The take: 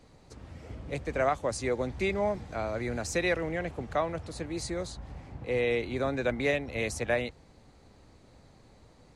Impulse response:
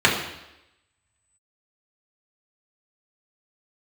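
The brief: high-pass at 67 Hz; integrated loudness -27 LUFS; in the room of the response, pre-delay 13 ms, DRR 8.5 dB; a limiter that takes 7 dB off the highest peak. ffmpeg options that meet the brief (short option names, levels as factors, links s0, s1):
-filter_complex "[0:a]highpass=67,alimiter=limit=0.0708:level=0:latency=1,asplit=2[s0][s1];[1:a]atrim=start_sample=2205,adelay=13[s2];[s1][s2]afir=irnorm=-1:irlink=0,volume=0.0316[s3];[s0][s3]amix=inputs=2:normalize=0,volume=2.11"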